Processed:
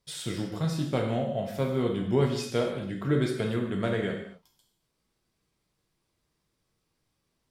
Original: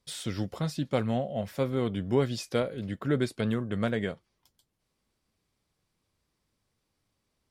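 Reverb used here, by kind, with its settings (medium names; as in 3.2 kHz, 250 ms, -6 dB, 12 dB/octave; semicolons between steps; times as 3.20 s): gated-style reverb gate 290 ms falling, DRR 0.5 dB; trim -1.5 dB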